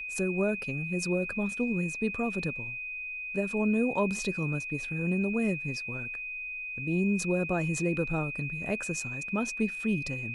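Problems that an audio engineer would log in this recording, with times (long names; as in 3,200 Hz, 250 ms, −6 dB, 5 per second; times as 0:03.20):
whistle 2,500 Hz −35 dBFS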